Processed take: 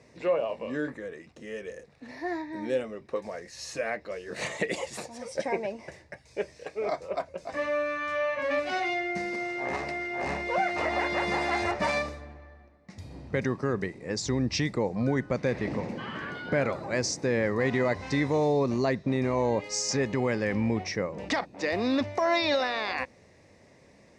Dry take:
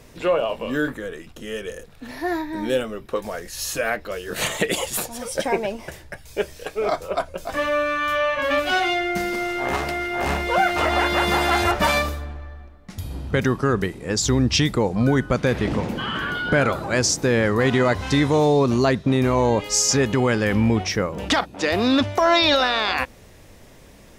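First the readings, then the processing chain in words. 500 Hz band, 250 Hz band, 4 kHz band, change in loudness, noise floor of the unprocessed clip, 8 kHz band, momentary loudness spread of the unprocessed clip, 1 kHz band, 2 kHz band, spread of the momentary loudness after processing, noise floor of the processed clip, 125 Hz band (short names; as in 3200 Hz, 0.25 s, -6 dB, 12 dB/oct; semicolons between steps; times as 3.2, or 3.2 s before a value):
-6.5 dB, -8.0 dB, -12.0 dB, -8.0 dB, -47 dBFS, -12.0 dB, 13 LU, -9.0 dB, -8.0 dB, 12 LU, -58 dBFS, -9.5 dB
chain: speaker cabinet 100–7600 Hz, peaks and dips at 550 Hz +3 dB, 1400 Hz -7 dB, 2000 Hz +5 dB, 3200 Hz -10 dB, 7000 Hz -4 dB; gain -8 dB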